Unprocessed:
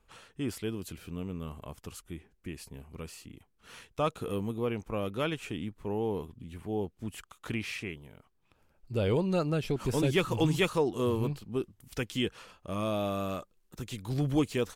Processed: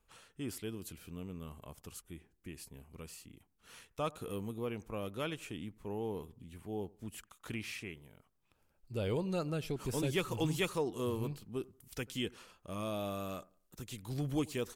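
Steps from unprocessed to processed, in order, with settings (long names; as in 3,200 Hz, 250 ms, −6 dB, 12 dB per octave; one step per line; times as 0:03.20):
high-shelf EQ 6,200 Hz +8 dB
on a send: bucket-brigade delay 89 ms, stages 1,024, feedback 30%, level −23 dB
on the sum: level −7 dB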